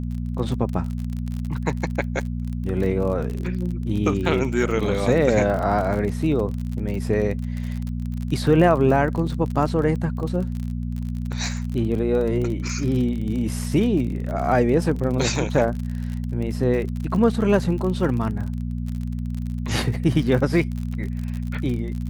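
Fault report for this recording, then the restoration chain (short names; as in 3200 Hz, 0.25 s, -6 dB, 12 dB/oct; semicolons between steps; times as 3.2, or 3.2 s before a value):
crackle 42/s -28 dBFS
hum 60 Hz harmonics 4 -27 dBFS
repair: de-click; de-hum 60 Hz, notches 4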